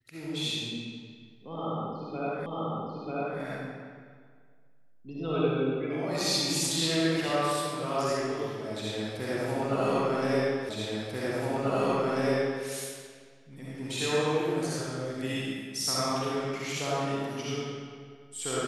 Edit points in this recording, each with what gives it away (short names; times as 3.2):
2.46 repeat of the last 0.94 s
10.69 repeat of the last 1.94 s